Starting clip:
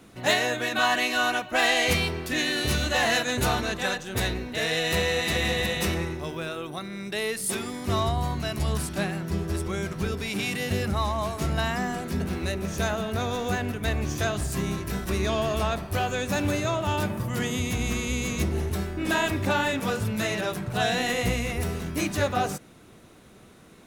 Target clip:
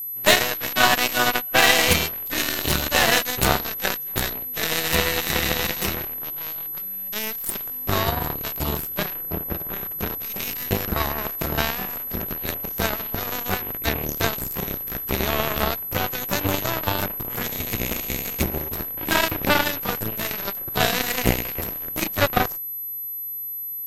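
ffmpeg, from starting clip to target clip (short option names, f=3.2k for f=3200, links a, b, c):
-filter_complex "[0:a]asettb=1/sr,asplit=3[a][b][c];[a]atrim=end=9.144[d];[b]atrim=start=9.14:end=9.91,asetpts=PTS-STARTPTS,afade=t=in:d=0.004:c=qsin,afade=t=out:st=0.766:d=0.004:c=qsin,adynamicsmooth=sensitivity=5.5:basefreq=2.5k[e];[c]atrim=start=9.906[f];[d][e]acrossfade=d=0.004:c1=hsin:c2=qsin[g];[g][f]acrossfade=d=0.004:c1=qsin:c2=hsin,aeval=exprs='0.355*(cos(1*acos(clip(val(0)/0.355,-1,1)))-cos(1*PI/2))+0.0251*(cos(4*acos(clip(val(0)/0.355,-1,1)))-cos(4*PI/2))+0.0562*(cos(7*acos(clip(val(0)/0.355,-1,1)))-cos(7*PI/2))':c=same,aeval=exprs='val(0)+0.0158*sin(2*PI*12000*n/s)':c=same,volume=7.5dB"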